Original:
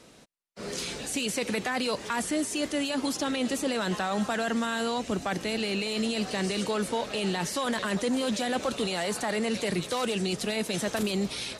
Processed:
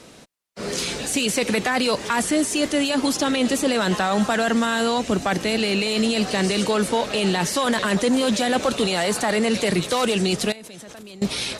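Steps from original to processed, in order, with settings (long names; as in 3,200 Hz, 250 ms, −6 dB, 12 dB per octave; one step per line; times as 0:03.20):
harmonic generator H 4 −35 dB, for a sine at −17.5 dBFS
0:10.52–0:11.22: output level in coarse steps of 24 dB
level +8 dB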